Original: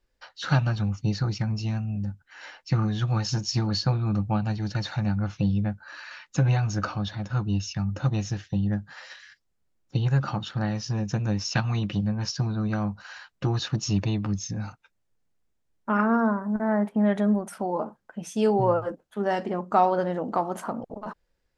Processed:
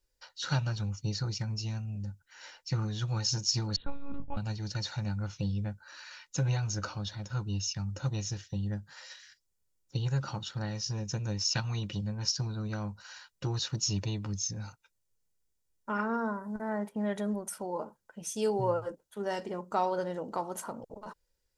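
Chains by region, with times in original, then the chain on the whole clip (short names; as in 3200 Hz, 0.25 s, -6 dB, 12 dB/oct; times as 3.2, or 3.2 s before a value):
3.76–4.37 monotone LPC vocoder at 8 kHz 280 Hz + mismatched tape noise reduction decoder only
whole clip: tone controls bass +1 dB, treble +13 dB; comb 2.1 ms, depth 33%; gain -8.5 dB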